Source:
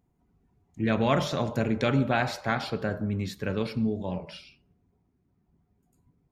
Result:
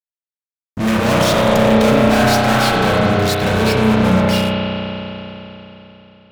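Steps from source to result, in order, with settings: fuzz box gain 45 dB, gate -49 dBFS; spring tank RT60 3.6 s, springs 32 ms, chirp 75 ms, DRR -3.5 dB; gain -4 dB

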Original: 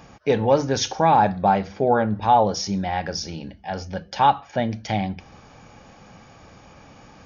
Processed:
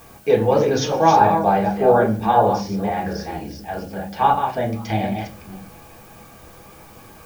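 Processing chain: reverse delay 0.241 s, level -6 dB; 2.36–4.73 high shelf 3900 Hz -10.5 dB; added noise blue -48 dBFS; reverb RT60 0.35 s, pre-delay 3 ms, DRR -2.5 dB; gain -3.5 dB

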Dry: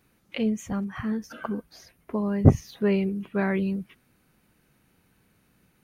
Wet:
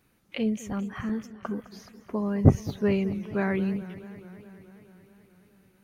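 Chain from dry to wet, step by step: 1.09–1.57 gate -35 dBFS, range -27 dB; warbling echo 0.213 s, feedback 73%, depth 156 cents, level -17 dB; gain -1.5 dB

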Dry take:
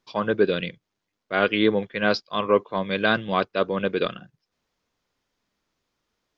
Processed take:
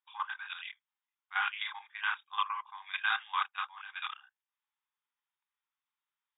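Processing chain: chorus voices 4, 1.4 Hz, delay 30 ms, depth 3 ms; level quantiser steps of 13 dB; brick-wall FIR band-pass 770–3800 Hz

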